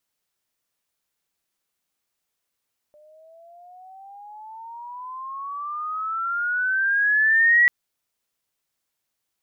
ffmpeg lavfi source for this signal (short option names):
-f lavfi -i "aevalsrc='pow(10,(-12+37*(t/4.74-1))/20)*sin(2*PI*595*4.74/(20.5*log(2)/12)*(exp(20.5*log(2)/12*t/4.74)-1))':d=4.74:s=44100"